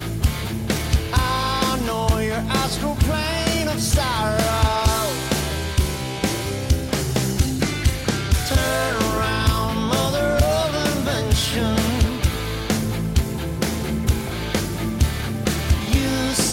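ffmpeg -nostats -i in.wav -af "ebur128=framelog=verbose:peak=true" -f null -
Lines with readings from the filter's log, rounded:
Integrated loudness:
  I:         -21.4 LUFS
  Threshold: -31.4 LUFS
Loudness range:
  LRA:         2.4 LU
  Threshold: -41.3 LUFS
  LRA low:   -22.7 LUFS
  LRA high:  -20.3 LUFS
True peak:
  Peak:       -8.2 dBFS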